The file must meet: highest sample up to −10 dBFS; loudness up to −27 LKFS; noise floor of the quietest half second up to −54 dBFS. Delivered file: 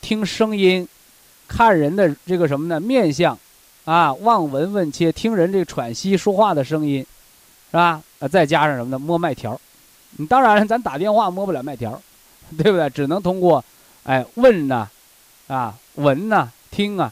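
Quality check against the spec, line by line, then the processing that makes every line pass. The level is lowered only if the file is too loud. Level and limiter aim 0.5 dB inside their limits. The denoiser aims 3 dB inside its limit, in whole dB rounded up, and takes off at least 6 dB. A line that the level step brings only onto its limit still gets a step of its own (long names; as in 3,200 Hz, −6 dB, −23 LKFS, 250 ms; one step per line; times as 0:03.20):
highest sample −4.0 dBFS: out of spec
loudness −18.5 LKFS: out of spec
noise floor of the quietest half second −51 dBFS: out of spec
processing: level −9 dB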